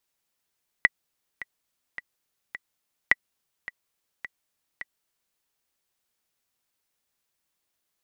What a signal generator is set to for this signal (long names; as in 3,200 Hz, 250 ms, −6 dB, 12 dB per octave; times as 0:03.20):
click track 106 BPM, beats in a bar 4, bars 2, 1,960 Hz, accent 18 dB −3.5 dBFS